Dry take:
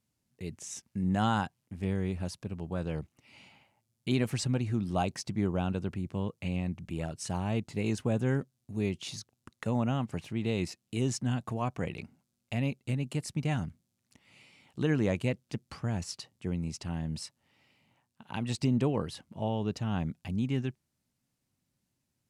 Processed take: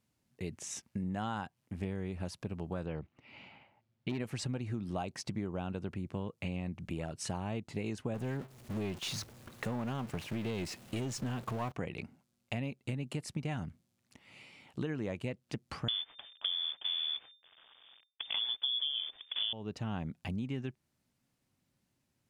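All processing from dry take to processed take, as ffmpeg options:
-filter_complex "[0:a]asettb=1/sr,asplit=3[a][b][c];[a]atrim=end=2.864[d];[b]atrim=start=2.86:end=4.2,asetpts=PTS-STARTPTS,afade=t=in:d=0.004:c=qsin,afade=t=out:st=1.336:d=0.004:c=qsin,lowpass=3.3k,asoftclip=type=hard:threshold=-22.5dB[e];[c]atrim=start=4.196[f];[d][e]acrossfade=d=0.004:c1=hsin:c2=qsin[g];[g][f]acrossfade=d=0.004:c1=qsin:c2=hsin,asettb=1/sr,asplit=3[h][i][j];[h]atrim=end=8.144[k];[i]atrim=start=8.14:end=11.72,asetpts=PTS-STARTPTS,afade=t=in:d=0.004:c=qsin,afade=t=out:st=3.576:d=0.004:c=qsin,aeval=exprs='val(0)+0.5*0.0106*sgn(val(0))':c=same,agate=range=-10dB:threshold=-42dB:ratio=16:release=100:detection=peak,aeval=exprs='(tanh(15.8*val(0)+0.25)-tanh(0.25))/15.8':c=same[l];[j]atrim=start=11.716[m];[k][l]acrossfade=d=0.004:c1=hsin:c2=qsin[n];[n][m]acrossfade=d=0.004:c1=qsin:c2=hsin,asettb=1/sr,asplit=3[o][p][q];[o]atrim=end=15.884[r];[p]atrim=start=15.88:end=19.53,asetpts=PTS-STARTPTS,afade=t=in:d=0.004:c=qsin,afade=t=out:st=3.646:d=0.004:c=qsin,lowshelf=f=660:t=q:w=1.5:g=10.5,acrusher=bits=7:dc=4:mix=0:aa=0.000001,lowpass=f=3.1k:t=q:w=0.5098,lowpass=f=3.1k:t=q:w=0.6013,lowpass=f=3.1k:t=q:w=0.9,lowpass=f=3.1k:t=q:w=2.563,afreqshift=-3600[s];[q]atrim=start=19.526[t];[r][s]acrossfade=d=0.004:c1=hsin:c2=qsin[u];[u][t]acrossfade=d=0.004:c1=qsin:c2=hsin,bass=f=250:g=-3,treble=f=4k:g=-5,acompressor=threshold=-38dB:ratio=6,volume=4dB"

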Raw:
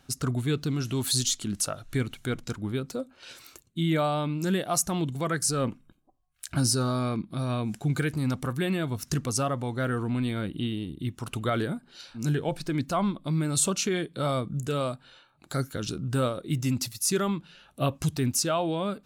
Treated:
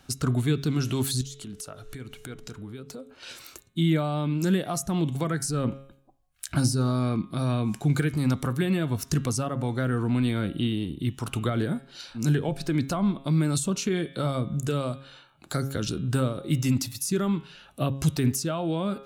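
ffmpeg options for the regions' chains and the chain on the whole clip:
-filter_complex "[0:a]asettb=1/sr,asplit=3[a][b][c];[a]atrim=end=1.214[d];[b]atrim=start=1.21:end=3.14,asetpts=PTS-STARTPTS,afade=t=in:d=0.004:c=qsin,afade=t=out:st=1.926:d=0.004:c=qsin,acompressor=threshold=-42dB:ratio=4:attack=3.2:release=140:knee=1:detection=peak,aeval=exprs='val(0)+0.00178*sin(2*PI*430*n/s)':c=same[e];[c]atrim=start=3.136[f];[d][e]acrossfade=d=0.004:c1=hsin:c2=qsin[g];[g][f]acrossfade=d=0.004:c1=qsin:c2=hsin,bandreject=f=136.3:t=h:w=4,bandreject=f=272.6:t=h:w=4,bandreject=f=408.9:t=h:w=4,bandreject=f=545.2:t=h:w=4,bandreject=f=681.5:t=h:w=4,bandreject=f=817.8:t=h:w=4,bandreject=f=954.1:t=h:w=4,bandreject=f=1.0904k:t=h:w=4,bandreject=f=1.2267k:t=h:w=4,bandreject=f=1.363k:t=h:w=4,bandreject=f=1.4993k:t=h:w=4,bandreject=f=1.6356k:t=h:w=4,bandreject=f=1.7719k:t=h:w=4,bandreject=f=1.9082k:t=h:w=4,bandreject=f=2.0445k:t=h:w=4,bandreject=f=2.1808k:t=h:w=4,bandreject=f=2.3171k:t=h:w=4,bandreject=f=2.4534k:t=h:w=4,bandreject=f=2.5897k:t=h:w=4,bandreject=f=2.726k:t=h:w=4,bandreject=f=2.8623k:t=h:w=4,bandreject=f=2.9986k:t=h:w=4,bandreject=f=3.1349k:t=h:w=4,bandreject=f=3.2712k:t=h:w=4,bandreject=f=3.4075k:t=h:w=4,bandreject=f=3.5438k:t=h:w=4,bandreject=f=3.6801k:t=h:w=4,bandreject=f=3.8164k:t=h:w=4,bandreject=f=3.9527k:t=h:w=4,acrossover=split=320[h][i];[i]acompressor=threshold=-33dB:ratio=6[j];[h][j]amix=inputs=2:normalize=0,volume=4dB"

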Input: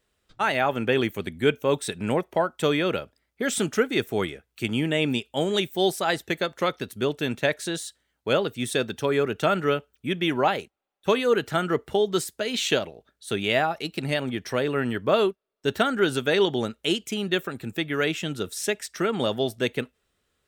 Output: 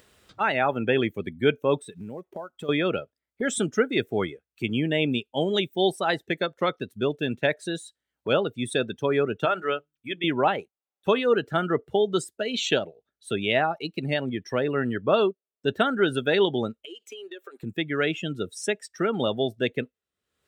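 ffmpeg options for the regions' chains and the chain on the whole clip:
-filter_complex "[0:a]asettb=1/sr,asplit=3[a][b][c];[a]atrim=end=1.784[d];[b]atrim=start=1.78:end=2.69,asetpts=PTS-STARTPTS,afade=t=in:d=0.004:c=qsin,afade=t=out:st=0.906:d=0.004:c=qsin,acrusher=bits=5:mode=log:mix=0:aa=0.000001,acompressor=threshold=-35dB:ratio=3:attack=3.2:release=140:knee=1:detection=peak[e];[c]atrim=start=2.686[f];[d][e]acrossfade=d=0.004:c1=hsin:c2=qsin[g];[g][f]acrossfade=d=0.004:c1=qsin:c2=hsin,asettb=1/sr,asplit=3[h][i][j];[h]atrim=end=9.454[k];[i]atrim=start=9.45:end=10.24,asetpts=PTS-STARTPTS,afade=t=in:d=0.004:c=qsin,afade=t=out:st=0.786:d=0.004:c=qsin,equalizer=f=180:w=0.75:g=-12.5,bandreject=f=50:t=h:w=6,bandreject=f=100:t=h:w=6,bandreject=f=150:t=h:w=6,bandreject=f=200:t=h:w=6,bandreject=f=250:t=h:w=6,bandreject=f=300:t=h:w=6,bandreject=f=350:t=h:w=6[l];[j]atrim=start=10.236[m];[k][l]acrossfade=d=0.004:c1=hsin:c2=qsin[n];[n][m]acrossfade=d=0.004:c1=qsin:c2=hsin,asettb=1/sr,asplit=3[o][p][q];[o]atrim=end=16.854[r];[p]atrim=start=16.85:end=17.63,asetpts=PTS-STARTPTS,afade=t=in:d=0.004:c=qsin,afade=t=out:st=0.776:d=0.004:c=qsin,highpass=f=370:w=0.5412,highpass=f=370:w=1.3066,acompressor=threshold=-37dB:ratio=4:attack=3.2:release=140:knee=1:detection=peak[s];[q]atrim=start=17.626[t];[r][s]acrossfade=d=0.004:c1=hsin:c2=qsin[u];[u][t]acrossfade=d=0.004:c1=qsin:c2=hsin,highpass=69,afftdn=nr=18:nf=-32,acompressor=mode=upward:threshold=-35dB:ratio=2.5"

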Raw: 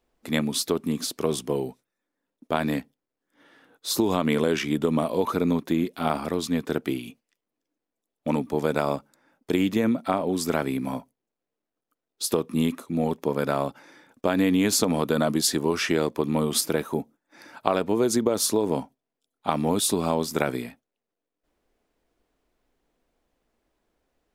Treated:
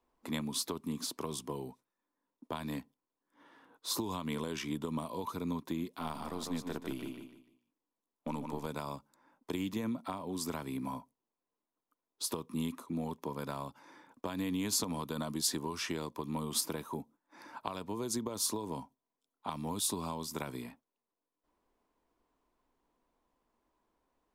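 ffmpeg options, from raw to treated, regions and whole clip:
-filter_complex "[0:a]asettb=1/sr,asplit=3[a][b][c];[a]atrim=end=5.994[d];[b]atrim=start=5.99:end=8.66,asetpts=PTS-STARTPTS,afade=t=in:d=0.004:c=qsin,afade=t=out:st=2.666:d=0.004:c=qsin,aeval=exprs='if(lt(val(0),0),0.708*val(0),val(0))':c=same,aecho=1:1:149|298|447|596:0.447|0.138|0.0429|0.0133,atrim=end_sample=117747[e];[c]atrim=start=8.656[f];[d][e]acrossfade=d=0.004:c1=hsin:c2=qsin[g];[g][f]acrossfade=d=0.004:c1=qsin:c2=hsin,equalizer=f=1k:w=3.2:g=13.5,acrossover=split=140|3000[h][i][j];[i]acompressor=threshold=-32dB:ratio=4[k];[h][k][j]amix=inputs=3:normalize=0,equalizer=f=270:w=1.2:g=4,volume=-8dB"

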